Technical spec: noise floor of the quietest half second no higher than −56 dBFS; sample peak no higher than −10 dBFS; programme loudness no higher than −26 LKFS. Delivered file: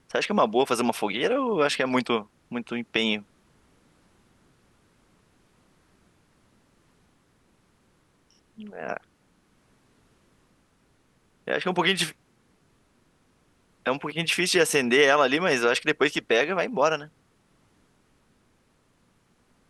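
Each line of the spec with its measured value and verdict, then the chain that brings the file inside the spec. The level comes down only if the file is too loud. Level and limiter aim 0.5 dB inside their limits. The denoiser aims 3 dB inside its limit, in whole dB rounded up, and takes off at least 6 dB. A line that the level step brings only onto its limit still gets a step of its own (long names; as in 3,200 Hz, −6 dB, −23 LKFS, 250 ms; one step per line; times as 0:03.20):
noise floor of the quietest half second −65 dBFS: in spec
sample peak −5.0 dBFS: out of spec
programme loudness −24.0 LKFS: out of spec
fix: level −2.5 dB
brickwall limiter −10.5 dBFS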